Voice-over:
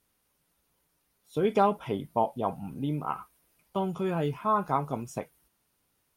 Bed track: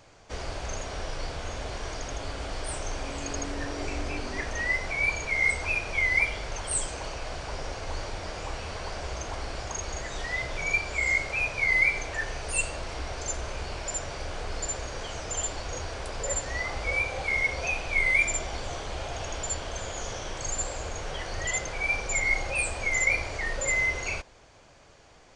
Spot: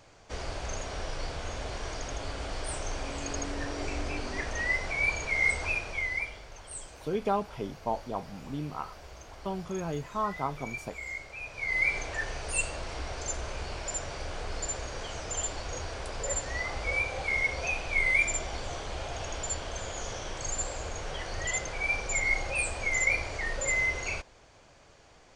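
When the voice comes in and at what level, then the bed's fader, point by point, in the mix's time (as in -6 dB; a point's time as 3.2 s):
5.70 s, -5.0 dB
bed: 5.66 s -1.5 dB
6.49 s -13 dB
11.4 s -13 dB
11.94 s -2 dB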